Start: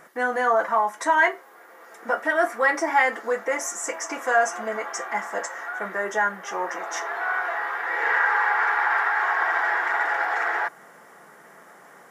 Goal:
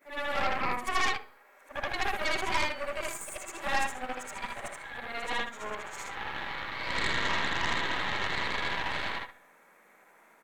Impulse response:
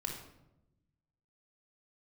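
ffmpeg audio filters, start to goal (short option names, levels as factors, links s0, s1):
-filter_complex "[0:a]afftfilt=real='re':imag='-im':win_size=8192:overlap=0.75,aeval=exprs='0.266*(cos(1*acos(clip(val(0)/0.266,-1,1)))-cos(1*PI/2))+0.075*(cos(6*acos(clip(val(0)/0.266,-1,1)))-cos(6*PI/2))':c=same,asetrate=51156,aresample=44100,bandreject=f=251.8:t=h:w=4,bandreject=f=503.6:t=h:w=4,bandreject=f=755.4:t=h:w=4,bandreject=f=1007.2:t=h:w=4,bandreject=f=1259:t=h:w=4,bandreject=f=1510.8:t=h:w=4,bandreject=f=1762.6:t=h:w=4,bandreject=f=2014.4:t=h:w=4,bandreject=f=2266.2:t=h:w=4,bandreject=f=2518:t=h:w=4,bandreject=f=2769.8:t=h:w=4,bandreject=f=3021.6:t=h:w=4,bandreject=f=3273.4:t=h:w=4,bandreject=f=3525.2:t=h:w=4,bandreject=f=3777:t=h:w=4,bandreject=f=4028.8:t=h:w=4,bandreject=f=4280.6:t=h:w=4,bandreject=f=4532.4:t=h:w=4,bandreject=f=4784.2:t=h:w=4,bandreject=f=5036:t=h:w=4,asplit=2[s0][s1];[s1]adelay=68,lowpass=f=2000:p=1,volume=0.126,asplit=2[s2][s3];[s3]adelay=68,lowpass=f=2000:p=1,volume=0.45,asplit=2[s4][s5];[s5]adelay=68,lowpass=f=2000:p=1,volume=0.45,asplit=2[s6][s7];[s7]adelay=68,lowpass=f=2000:p=1,volume=0.45[s8];[s2][s4][s6][s8]amix=inputs=4:normalize=0[s9];[s0][s9]amix=inputs=2:normalize=0,volume=0.473"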